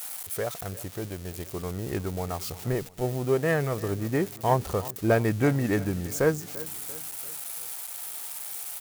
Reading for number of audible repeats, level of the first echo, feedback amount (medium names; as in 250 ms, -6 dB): 3, -18.0 dB, 48%